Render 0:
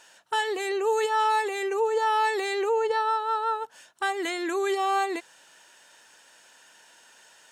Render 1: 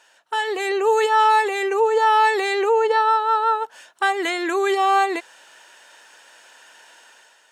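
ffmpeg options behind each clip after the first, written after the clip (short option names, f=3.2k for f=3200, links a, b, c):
-af "bass=f=250:g=-13,treble=f=4k:g=-5,dynaudnorm=f=130:g=7:m=8dB"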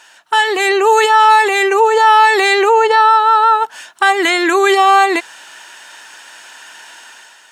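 -af "equalizer=f=510:t=o:w=0.66:g=-9.5,alimiter=level_in=13dB:limit=-1dB:release=50:level=0:latency=1,volume=-1dB"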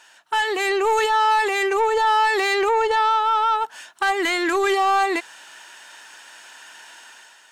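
-af "asoftclip=type=tanh:threshold=-6.5dB,volume=-6.5dB"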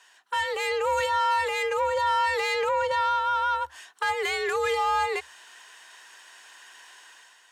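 -af "afreqshift=72,volume=-6dB"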